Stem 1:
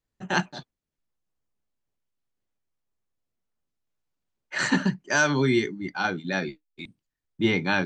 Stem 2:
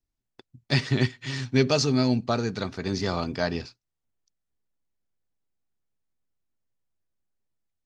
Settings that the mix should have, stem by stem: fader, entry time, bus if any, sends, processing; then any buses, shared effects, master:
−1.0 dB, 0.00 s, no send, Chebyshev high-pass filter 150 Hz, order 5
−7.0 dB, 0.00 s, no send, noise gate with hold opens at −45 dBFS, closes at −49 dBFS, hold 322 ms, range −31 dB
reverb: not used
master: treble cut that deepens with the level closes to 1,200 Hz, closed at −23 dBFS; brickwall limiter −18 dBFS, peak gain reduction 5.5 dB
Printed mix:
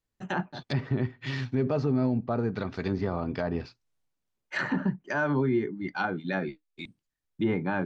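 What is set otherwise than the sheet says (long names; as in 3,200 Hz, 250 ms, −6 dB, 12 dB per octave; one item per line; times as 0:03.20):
stem 1: missing Chebyshev high-pass filter 150 Hz, order 5
stem 2 −7.0 dB → 0.0 dB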